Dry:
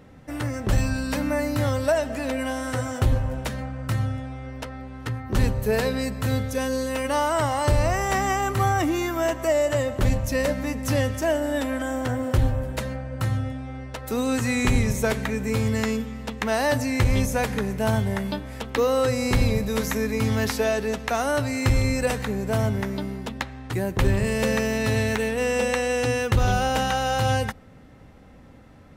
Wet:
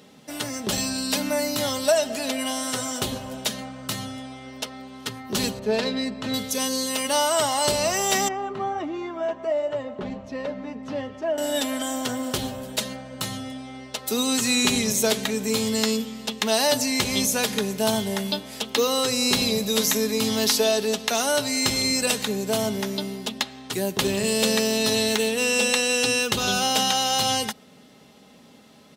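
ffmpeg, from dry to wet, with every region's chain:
-filter_complex "[0:a]asettb=1/sr,asplit=3[s0][s1][s2];[s0]atrim=end=5.594[s3];[s1]atrim=start=5.59:end=6.34,asetpts=PTS-STARTPTS,afade=t=in:d=0.004:c=qsin,afade=t=out:st=0.746:d=0.004:c=qsin,aecho=1:1:3.3:0.32,atrim=end_sample=33075,adynamicsmooth=sensitivity=1:basefreq=2400[s4];[s2]atrim=start=6.336[s5];[s3][s4]acrossfade=d=0.004:c1=hsin:c2=qsin[s6];[s6][s5]acrossfade=d=0.004:c1=qsin:c2=hsin,asettb=1/sr,asplit=3[s7][s8][s9];[s7]atrim=end=8.284[s10];[s8]atrim=start=8.28:end=11.38,asetpts=PTS-STARTPTS,afade=t=in:d=0.004:c=qsin,afade=t=out:st=3.096:d=0.004:c=qsin,lowpass=1500,flanger=delay=2.1:depth=2.9:regen=-62:speed=1.4:shape=sinusoidal[s11];[s9]atrim=start=11.376[s12];[s10][s11]acrossfade=d=0.004:c1=hsin:c2=qsin[s13];[s13][s12]acrossfade=d=0.004:c1=qsin:c2=hsin,highpass=200,highshelf=f=2600:t=q:w=1.5:g=9,aecho=1:1:4.8:0.42"

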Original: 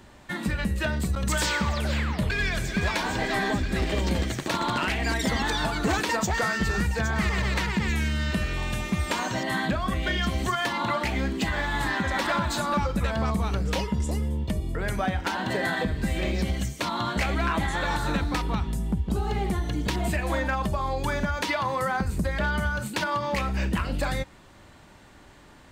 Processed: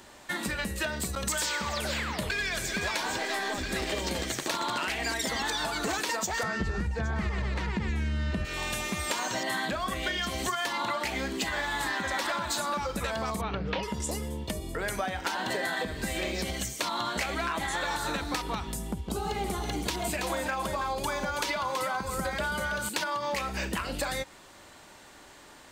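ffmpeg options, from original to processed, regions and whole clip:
-filter_complex "[0:a]asettb=1/sr,asplit=3[s0][s1][s2];[s0]atrim=end=3.184[s3];[s1]atrim=start=3.18:end=3.58,asetpts=PTS-STARTPTS,afade=t=in:d=0.004:c=qsin,afade=t=out:st=0.396:d=0.004:c=qsin,highpass=230,aeval=exprs='(tanh(12.6*val(0)+0.45)-tanh(0.45))/12.6':c=same[s4];[s2]atrim=start=3.576[s5];[s3][s4]acrossfade=d=0.004:c1=hsin:c2=qsin[s6];[s6][s5]acrossfade=d=0.004:c1=qsin:c2=hsin,asettb=1/sr,asplit=3[s7][s8][s9];[s7]atrim=end=6.434[s10];[s8]atrim=start=6.43:end=8.45,asetpts=PTS-STARTPTS,afade=t=in:d=0.004:c=qsin,afade=t=out:st=2.016:d=0.004:c=qsin,highpass=49,aemphasis=mode=reproduction:type=riaa[s11];[s9]atrim=start=8.446[s12];[s10][s11]acrossfade=d=0.004:c1=hsin:c2=qsin[s13];[s13][s12]acrossfade=d=0.004:c1=qsin:c2=hsin,asettb=1/sr,asplit=3[s14][s15][s16];[s14]atrim=end=13.414[s17];[s15]atrim=start=13.41:end=13.83,asetpts=PTS-STARTPTS,afade=t=in:d=0.004:c=qsin,afade=t=out:st=0.416:d=0.004:c=qsin,lowpass=f=3400:w=0.5412,lowpass=f=3400:w=1.3066,equalizer=f=160:w=2.2:g=8[s18];[s16]atrim=start=13.826[s19];[s17][s18]acrossfade=d=0.004:c1=hsin:c2=qsin[s20];[s20][s19]acrossfade=d=0.004:c1=qsin:c2=hsin,asettb=1/sr,asplit=3[s21][s22][s23];[s21]atrim=end=18.934[s24];[s22]atrim=start=18.93:end=22.89,asetpts=PTS-STARTPTS,afade=t=in:d=0.004:c=qsin,afade=t=out:st=3.956:d=0.004:c=qsin,bandreject=f=1800:w=12,aecho=1:1:327:0.447,atrim=end_sample=174636[s25];[s23]atrim=start=22.886[s26];[s24][s25]acrossfade=d=0.004:c1=hsin:c2=qsin[s27];[s27][s26]acrossfade=d=0.004:c1=qsin:c2=hsin,bass=f=250:g=-11,treble=f=4000:g=6,acompressor=threshold=0.0355:ratio=6,volume=1.19"

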